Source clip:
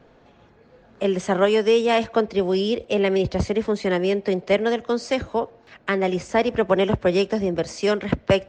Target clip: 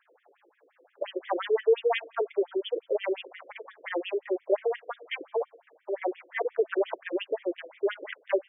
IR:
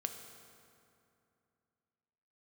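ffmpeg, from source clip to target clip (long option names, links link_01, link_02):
-filter_complex "[0:a]asplit=2[link_01][link_02];[link_02]aderivative[link_03];[1:a]atrim=start_sample=2205[link_04];[link_03][link_04]afir=irnorm=-1:irlink=0,volume=-6.5dB[link_05];[link_01][link_05]amix=inputs=2:normalize=0,afftfilt=real='re*between(b*sr/1024,390*pow(2600/390,0.5+0.5*sin(2*PI*5.7*pts/sr))/1.41,390*pow(2600/390,0.5+0.5*sin(2*PI*5.7*pts/sr))*1.41)':imag='im*between(b*sr/1024,390*pow(2600/390,0.5+0.5*sin(2*PI*5.7*pts/sr))/1.41,390*pow(2600/390,0.5+0.5*sin(2*PI*5.7*pts/sr))*1.41)':win_size=1024:overlap=0.75,volume=-2.5dB"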